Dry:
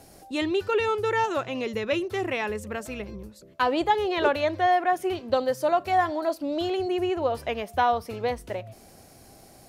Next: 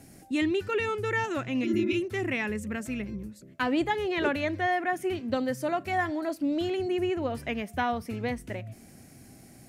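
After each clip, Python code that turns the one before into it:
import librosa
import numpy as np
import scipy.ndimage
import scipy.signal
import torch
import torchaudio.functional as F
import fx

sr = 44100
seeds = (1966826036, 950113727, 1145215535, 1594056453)

y = fx.spec_repair(x, sr, seeds[0], start_s=1.67, length_s=0.26, low_hz=300.0, high_hz=2200.0, source='after')
y = fx.graphic_eq(y, sr, hz=(125, 250, 500, 1000, 2000, 4000, 8000), db=(7, 9, -4, -5, 7, -4, 4))
y = F.gain(torch.from_numpy(y), -4.0).numpy()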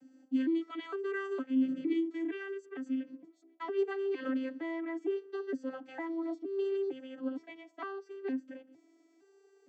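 y = fx.vocoder_arp(x, sr, chord='major triad', root=60, every_ms=460)
y = y + 0.96 * np.pad(y, (int(7.0 * sr / 1000.0), 0))[:len(y)]
y = F.gain(torch.from_numpy(y), -7.5).numpy()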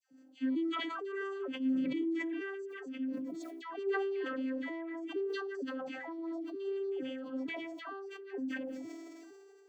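y = fx.dispersion(x, sr, late='lows', ms=99.0, hz=1000.0)
y = fx.sustainer(y, sr, db_per_s=22.0)
y = F.gain(torch.from_numpy(y), -4.0).numpy()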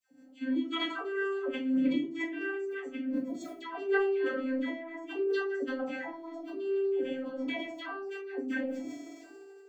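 y = fx.room_shoebox(x, sr, seeds[1], volume_m3=180.0, walls='furnished', distance_m=2.0)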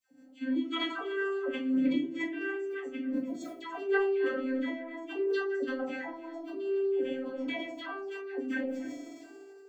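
y = x + 10.0 ** (-17.0 / 20.0) * np.pad(x, (int(291 * sr / 1000.0), 0))[:len(x)]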